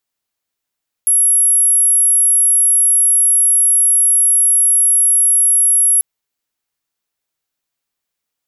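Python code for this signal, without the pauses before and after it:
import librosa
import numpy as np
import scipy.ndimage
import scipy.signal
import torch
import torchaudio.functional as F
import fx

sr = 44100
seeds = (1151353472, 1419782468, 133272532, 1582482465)

y = 10.0 ** (-8.5 / 20.0) * np.sin(2.0 * np.pi * (11200.0 * (np.arange(round(4.94 * sr)) / sr)))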